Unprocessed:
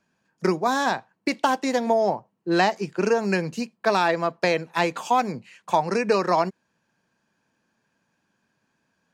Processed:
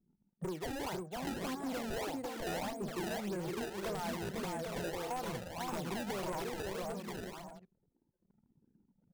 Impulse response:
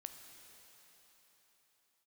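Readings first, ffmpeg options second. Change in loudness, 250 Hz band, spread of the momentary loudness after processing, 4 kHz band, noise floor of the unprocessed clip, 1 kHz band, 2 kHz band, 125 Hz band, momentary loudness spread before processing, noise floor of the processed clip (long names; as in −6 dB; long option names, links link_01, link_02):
−15.5 dB, −12.5 dB, 4 LU, −12.0 dB, −74 dBFS, −18.0 dB, −16.5 dB, −10.0 dB, 7 LU, −80 dBFS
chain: -filter_complex "[0:a]aeval=exprs='(mod(3.35*val(0)+1,2)-1)/3.35':channel_layout=same,tiltshelf=frequency=1300:gain=8.5,acompressor=threshold=-32dB:ratio=5,asplit=2[link_01][link_02];[link_02]aecho=0:1:500|800|980|1088|1153:0.631|0.398|0.251|0.158|0.1[link_03];[link_01][link_03]amix=inputs=2:normalize=0,acrusher=samples=23:mix=1:aa=0.000001:lfo=1:lforange=36.8:lforate=1.7,flanger=delay=0.5:depth=2.1:regen=-40:speed=0.69:shape=triangular,asoftclip=type=tanh:threshold=-34.5dB,anlmdn=0.0000158,volume=1dB"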